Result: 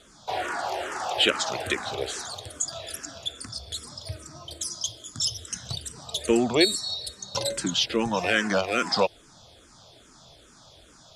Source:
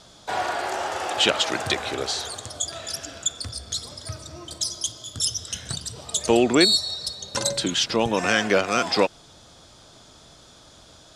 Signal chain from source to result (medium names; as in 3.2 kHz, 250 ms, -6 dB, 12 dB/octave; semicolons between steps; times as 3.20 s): barber-pole phaser -2.4 Hz